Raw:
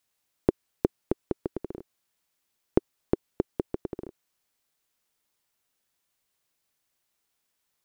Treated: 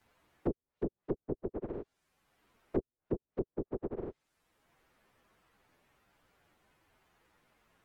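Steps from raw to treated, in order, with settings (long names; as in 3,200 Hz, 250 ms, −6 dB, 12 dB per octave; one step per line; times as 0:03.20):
partials spread apart or drawn together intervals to 119%
treble cut that deepens with the level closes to 490 Hz, closed at −34 dBFS
multiband upward and downward compressor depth 70%
level +1.5 dB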